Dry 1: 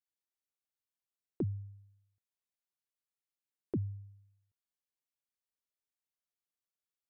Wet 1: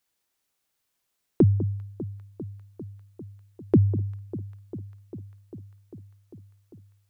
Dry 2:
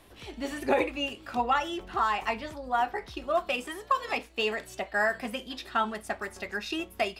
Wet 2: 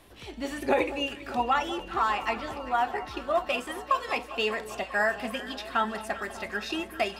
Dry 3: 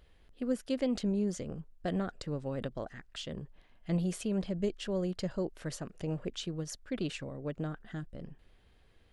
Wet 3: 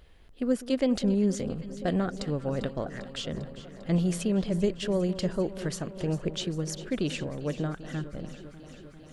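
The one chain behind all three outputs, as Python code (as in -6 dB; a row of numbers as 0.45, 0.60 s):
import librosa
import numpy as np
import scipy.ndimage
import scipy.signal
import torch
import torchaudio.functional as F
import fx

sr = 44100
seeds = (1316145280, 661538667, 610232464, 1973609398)

y = fx.echo_alternate(x, sr, ms=199, hz=1200.0, feedback_pct=86, wet_db=-13.5)
y = y * 10.0 ** (-30 / 20.0) / np.sqrt(np.mean(np.square(y)))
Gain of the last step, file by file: +16.0, +0.5, +6.0 dB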